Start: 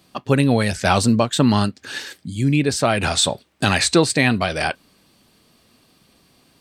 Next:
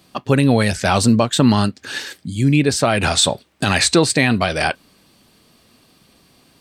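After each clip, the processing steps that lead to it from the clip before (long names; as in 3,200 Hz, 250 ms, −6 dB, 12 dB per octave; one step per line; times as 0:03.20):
boost into a limiter +5 dB
level −2 dB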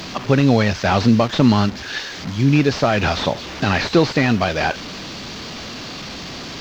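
linear delta modulator 32 kbit/s, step −25 dBFS
bit reduction 9 bits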